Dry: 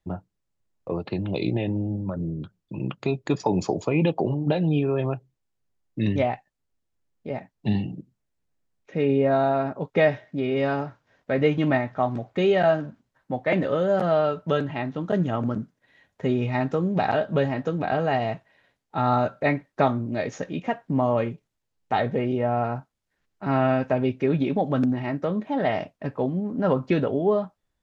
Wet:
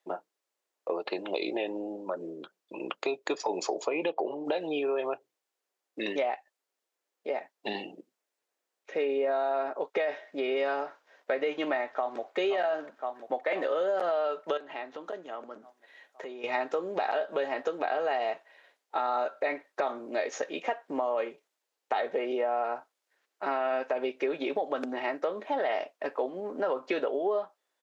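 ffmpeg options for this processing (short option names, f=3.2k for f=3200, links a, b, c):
-filter_complex "[0:a]asettb=1/sr,asplit=3[a][b][c];[a]atrim=end=1.604[d];[b]atrim=start=1.6:end=2.23,asetpts=PTS-STARTPTS,afade=t=in:d=0.004:c=qsin,afade=t=out:st=0.626:d=0.004:c=qsin,bandreject=f=2.1k:w=12[e];[c]atrim=start=2.226[f];[d][e]acrossfade=d=0.004:c1=hsin:c2=qsin[g];[g][f]acrossfade=d=0.004:c1=qsin:c2=hsin,asettb=1/sr,asplit=3[h][i][j];[h]atrim=end=3.864[k];[i]atrim=start=3.86:end=4.45,asetpts=PTS-STARTPTS,afade=t=in:d=0.004:c=qsin,afade=t=out:st=0.586:d=0.004:c=qsin,highshelf=f=6.2k:g=-12[l];[j]atrim=start=4.446[m];[k][l]acrossfade=d=0.004:c1=hsin:c2=qsin[n];[n][m]acrossfade=d=0.004:c1=qsin:c2=hsin,asplit=2[o][p];[p]afade=t=in:st=11.92:d=0.01,afade=t=out:st=12.36:d=0.01,aecho=0:1:520|1040|1560|2080|2600|3120|3640|4160:0.375837|0.225502|0.135301|0.0811809|0.0487085|0.0292251|0.0175351|0.010521[q];[o][q]amix=inputs=2:normalize=0,asettb=1/sr,asplit=3[r][s][t];[r]atrim=end=14.574[u];[s]atrim=start=14.57:end=16.44,asetpts=PTS-STARTPTS,afade=t=in:d=0.004:c=qsin,afade=t=out:st=1.866:d=0.004:c=qsin,acompressor=threshold=-34dB:ratio=10:attack=3.2:release=140:knee=1:detection=peak[v];[t]atrim=start=16.436[w];[u][v]acrossfade=d=0.004:c1=hsin:c2=qsin[x];[x][w]acrossfade=d=0.004:c1=qsin:c2=hsin,highpass=f=400:w=0.5412,highpass=f=400:w=1.3066,alimiter=limit=-17dB:level=0:latency=1:release=35,acompressor=threshold=-32dB:ratio=3,volume=4dB"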